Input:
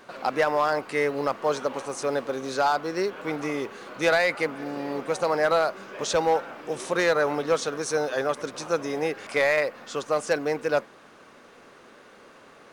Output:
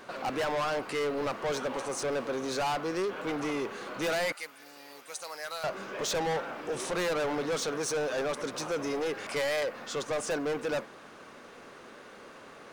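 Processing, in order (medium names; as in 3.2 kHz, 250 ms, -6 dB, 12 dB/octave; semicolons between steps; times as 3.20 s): 4.32–5.64 s: pre-emphasis filter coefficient 0.97; saturation -29 dBFS, distortion -6 dB; trim +1.5 dB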